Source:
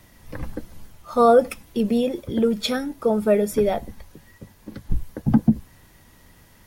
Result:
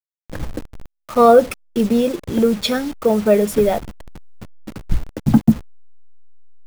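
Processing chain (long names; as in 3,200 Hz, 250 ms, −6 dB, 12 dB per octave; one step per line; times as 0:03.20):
hold until the input has moved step −33.5 dBFS
level +4.5 dB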